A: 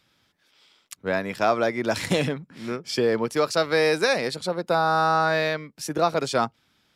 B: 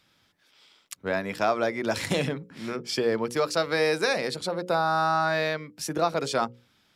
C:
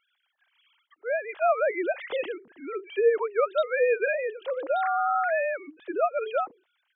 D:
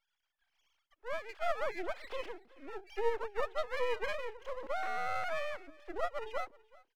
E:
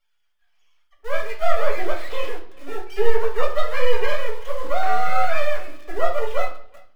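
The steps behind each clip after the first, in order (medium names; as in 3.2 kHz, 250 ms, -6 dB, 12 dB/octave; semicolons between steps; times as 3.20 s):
hum notches 60/120/180/240/300/360/420/480/540 Hz; in parallel at -2 dB: compression, threshold -30 dBFS, peak gain reduction 13.5 dB; on the sum: trim -4.5 dB
formants replaced by sine waves
half-wave rectifier; delay 376 ms -23 dB; trim -6.5 dB
in parallel at -3.5 dB: word length cut 8-bit, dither none; on the sum: flange 0.32 Hz, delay 6.8 ms, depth 6 ms, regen -42%; reverberation RT60 0.55 s, pre-delay 4 ms, DRR -0.5 dB; trim +7 dB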